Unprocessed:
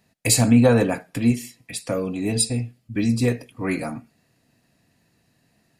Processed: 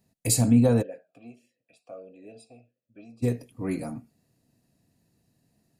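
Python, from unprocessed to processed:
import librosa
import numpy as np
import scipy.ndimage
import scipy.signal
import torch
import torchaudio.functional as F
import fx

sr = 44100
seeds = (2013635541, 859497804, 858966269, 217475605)

y = fx.peak_eq(x, sr, hz=1900.0, db=-11.0, octaves=2.6)
y = fx.vowel_sweep(y, sr, vowels='a-e', hz=1.6, at=(0.81, 3.22), fade=0.02)
y = y * librosa.db_to_amplitude(-3.0)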